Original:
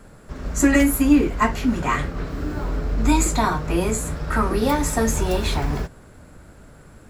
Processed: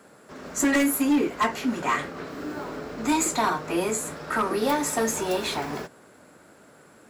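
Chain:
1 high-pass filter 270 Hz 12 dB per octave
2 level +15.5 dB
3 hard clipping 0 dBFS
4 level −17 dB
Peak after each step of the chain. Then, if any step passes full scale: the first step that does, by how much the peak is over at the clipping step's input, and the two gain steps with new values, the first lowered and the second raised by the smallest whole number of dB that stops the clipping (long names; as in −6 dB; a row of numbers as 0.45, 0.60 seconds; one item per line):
−5.5, +10.0, 0.0, −17.0 dBFS
step 2, 10.0 dB
step 2 +5.5 dB, step 4 −7 dB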